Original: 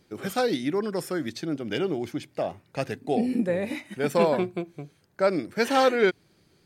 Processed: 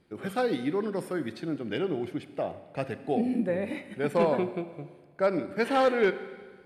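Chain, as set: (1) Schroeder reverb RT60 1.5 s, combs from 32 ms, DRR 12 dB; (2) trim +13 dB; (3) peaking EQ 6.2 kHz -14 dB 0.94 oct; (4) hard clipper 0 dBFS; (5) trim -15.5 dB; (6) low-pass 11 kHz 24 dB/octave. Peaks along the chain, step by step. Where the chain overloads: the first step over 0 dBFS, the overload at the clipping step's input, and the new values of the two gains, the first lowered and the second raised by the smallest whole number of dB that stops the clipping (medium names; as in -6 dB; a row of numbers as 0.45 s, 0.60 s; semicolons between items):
-9.0 dBFS, +4.0 dBFS, +4.0 dBFS, 0.0 dBFS, -15.5 dBFS, -15.0 dBFS; step 2, 4.0 dB; step 2 +9 dB, step 5 -11.5 dB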